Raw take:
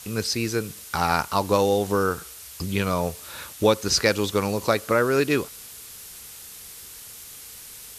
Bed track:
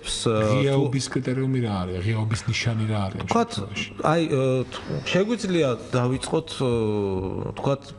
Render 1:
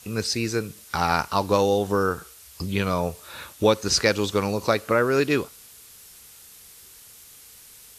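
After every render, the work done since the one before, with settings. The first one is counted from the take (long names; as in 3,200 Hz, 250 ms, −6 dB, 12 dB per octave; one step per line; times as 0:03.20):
noise reduction from a noise print 6 dB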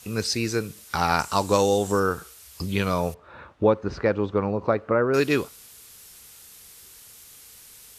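0:01.19–0:02.00: parametric band 7,600 Hz +13.5 dB 0.46 octaves
0:03.14–0:05.14: low-pass filter 1,300 Hz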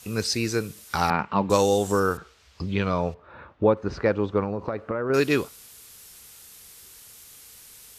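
0:01.10–0:01.50: loudspeaker in its box 110–2,600 Hz, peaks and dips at 200 Hz +8 dB, 690 Hz −4 dB, 1,400 Hz −4 dB
0:02.17–0:03.77: high-frequency loss of the air 170 metres
0:04.43–0:05.10: downward compressor 10 to 1, threshold −23 dBFS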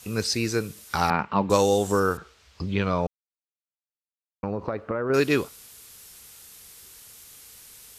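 0:03.07–0:04.43: silence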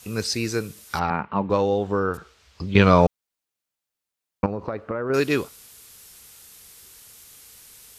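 0:00.99–0:02.14: high-frequency loss of the air 320 metres
0:02.75–0:04.46: clip gain +10 dB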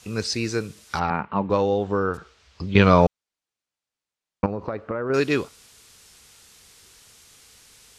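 low-pass filter 7,600 Hz 12 dB per octave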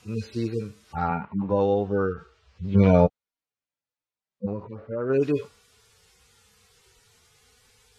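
harmonic-percussive split with one part muted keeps harmonic
high-shelf EQ 3,800 Hz −8 dB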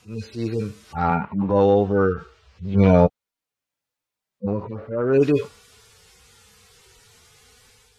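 automatic gain control gain up to 7 dB
transient designer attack −6 dB, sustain +1 dB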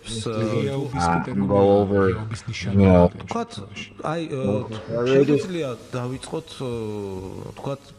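mix in bed track −5.5 dB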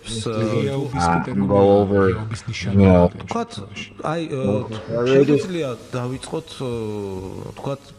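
level +2.5 dB
brickwall limiter −2 dBFS, peak gain reduction 2.5 dB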